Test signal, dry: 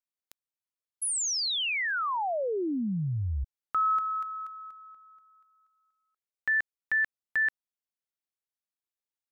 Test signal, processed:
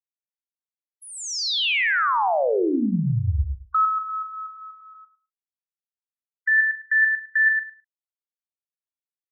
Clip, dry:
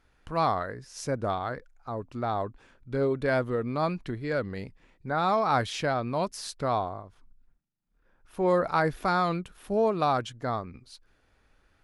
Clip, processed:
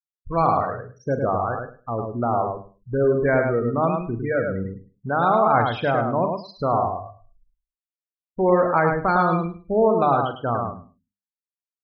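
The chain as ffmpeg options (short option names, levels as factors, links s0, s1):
-filter_complex "[0:a]afftfilt=real='re*gte(hypot(re,im),0.0398)':imag='im*gte(hypot(re,im),0.0398)':win_size=1024:overlap=0.75,lowpass=3400,bandreject=f=50:t=h:w=6,bandreject=f=100:t=h:w=6,bandreject=f=150:t=h:w=6,bandreject=f=200:t=h:w=6,bandreject=f=250:t=h:w=6,bandreject=f=300:t=h:w=6,asplit=2[s0][s1];[s1]acompressor=threshold=0.0178:ratio=4:attack=0.26:release=816:knee=1:detection=rms,volume=0.944[s2];[s0][s2]amix=inputs=2:normalize=0,asplit=2[s3][s4];[s4]adelay=42,volume=0.251[s5];[s3][s5]amix=inputs=2:normalize=0,asplit=2[s6][s7];[s7]aecho=0:1:105|210|315:0.596|0.0953|0.0152[s8];[s6][s8]amix=inputs=2:normalize=0,volume=1.58"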